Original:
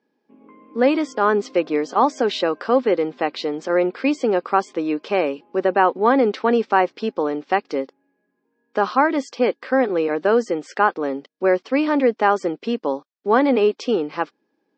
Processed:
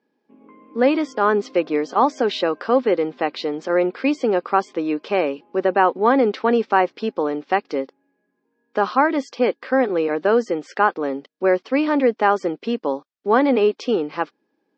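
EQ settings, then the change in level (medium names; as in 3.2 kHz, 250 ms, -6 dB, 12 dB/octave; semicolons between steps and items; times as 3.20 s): low-pass 6.2 kHz 12 dB/octave; 0.0 dB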